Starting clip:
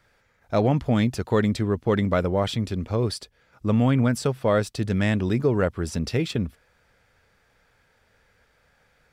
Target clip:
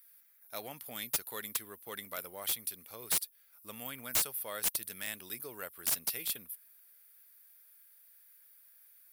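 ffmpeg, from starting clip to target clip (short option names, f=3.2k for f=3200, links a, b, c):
-af "aexciter=amount=8.3:drive=8.1:freq=9.9k,aderivative,aeval=exprs='(mod(11.2*val(0)+1,2)-1)/11.2':c=same,volume=-1dB"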